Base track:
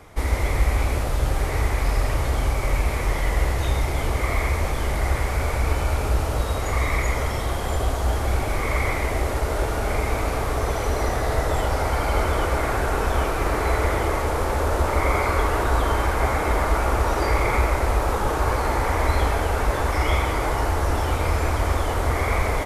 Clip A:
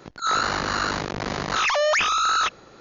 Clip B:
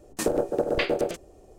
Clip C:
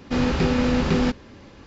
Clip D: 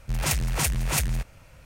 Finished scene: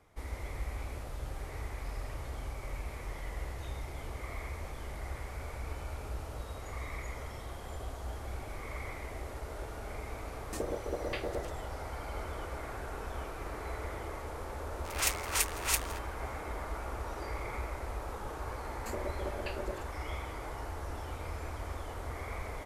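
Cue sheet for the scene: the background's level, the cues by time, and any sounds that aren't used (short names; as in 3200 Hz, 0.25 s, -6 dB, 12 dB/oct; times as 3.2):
base track -18 dB
10.34 add B -12.5 dB
14.76 add D -3.5 dB + HPF 860 Hz
18.67 add B -17.5 dB + ripple EQ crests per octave 1.4, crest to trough 12 dB
not used: A, C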